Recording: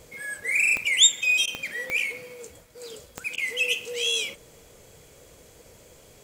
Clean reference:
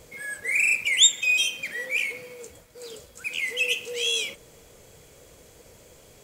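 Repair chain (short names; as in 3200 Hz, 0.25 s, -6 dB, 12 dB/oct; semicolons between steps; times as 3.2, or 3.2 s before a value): de-click; interpolate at 1.46/3.36, 14 ms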